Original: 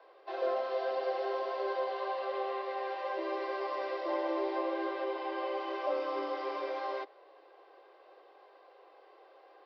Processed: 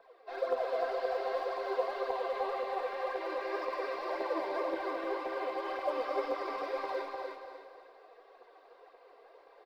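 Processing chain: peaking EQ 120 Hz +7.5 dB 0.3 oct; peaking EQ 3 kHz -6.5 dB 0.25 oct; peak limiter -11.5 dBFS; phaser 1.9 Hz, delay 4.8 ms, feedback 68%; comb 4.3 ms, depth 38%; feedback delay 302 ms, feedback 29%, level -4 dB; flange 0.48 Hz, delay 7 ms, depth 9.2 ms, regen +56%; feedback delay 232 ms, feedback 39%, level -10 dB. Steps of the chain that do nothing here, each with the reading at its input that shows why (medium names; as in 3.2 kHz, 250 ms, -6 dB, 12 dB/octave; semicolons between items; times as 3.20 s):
peaking EQ 120 Hz: input has nothing below 290 Hz; peak limiter -11.5 dBFS: peak at its input -21.5 dBFS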